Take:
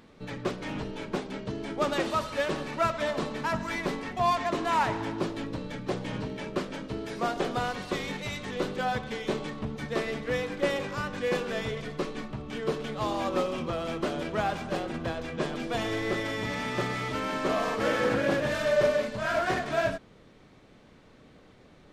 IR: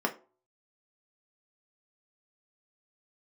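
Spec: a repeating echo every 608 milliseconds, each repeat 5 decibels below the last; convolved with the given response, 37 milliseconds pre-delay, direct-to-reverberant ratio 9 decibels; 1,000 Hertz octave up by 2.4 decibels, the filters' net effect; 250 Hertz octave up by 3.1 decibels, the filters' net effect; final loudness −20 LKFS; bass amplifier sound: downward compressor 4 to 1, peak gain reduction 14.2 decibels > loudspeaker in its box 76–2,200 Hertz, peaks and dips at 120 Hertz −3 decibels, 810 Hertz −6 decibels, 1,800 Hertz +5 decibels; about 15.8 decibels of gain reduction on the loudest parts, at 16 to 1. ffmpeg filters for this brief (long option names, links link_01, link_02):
-filter_complex "[0:a]equalizer=frequency=250:width_type=o:gain=4,equalizer=frequency=1000:width_type=o:gain=5,acompressor=threshold=-33dB:ratio=16,aecho=1:1:608|1216|1824|2432|3040|3648|4256:0.562|0.315|0.176|0.0988|0.0553|0.031|0.0173,asplit=2[link_01][link_02];[1:a]atrim=start_sample=2205,adelay=37[link_03];[link_02][link_03]afir=irnorm=-1:irlink=0,volume=-18dB[link_04];[link_01][link_04]amix=inputs=2:normalize=0,acompressor=threshold=-46dB:ratio=4,highpass=frequency=76:width=0.5412,highpass=frequency=76:width=1.3066,equalizer=frequency=120:width_type=q:width=4:gain=-3,equalizer=frequency=810:width_type=q:width=4:gain=-6,equalizer=frequency=1800:width_type=q:width=4:gain=5,lowpass=frequency=2200:width=0.5412,lowpass=frequency=2200:width=1.3066,volume=27.5dB"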